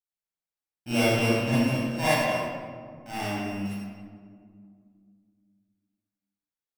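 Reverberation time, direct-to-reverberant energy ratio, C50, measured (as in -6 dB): 2.1 s, -12.0 dB, -6.0 dB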